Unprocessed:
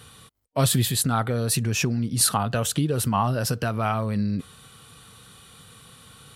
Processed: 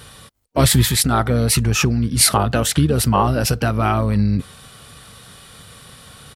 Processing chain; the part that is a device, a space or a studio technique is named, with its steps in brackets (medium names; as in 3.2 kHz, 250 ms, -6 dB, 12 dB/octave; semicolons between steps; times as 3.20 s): octave pedal (harmony voices -12 st -7 dB); trim +6 dB